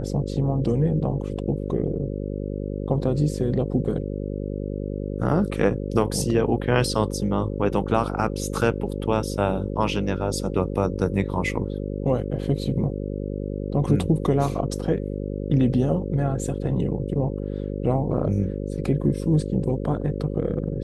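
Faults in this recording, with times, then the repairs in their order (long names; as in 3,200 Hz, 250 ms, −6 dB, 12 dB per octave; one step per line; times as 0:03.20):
mains buzz 50 Hz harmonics 11 −29 dBFS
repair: hum removal 50 Hz, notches 11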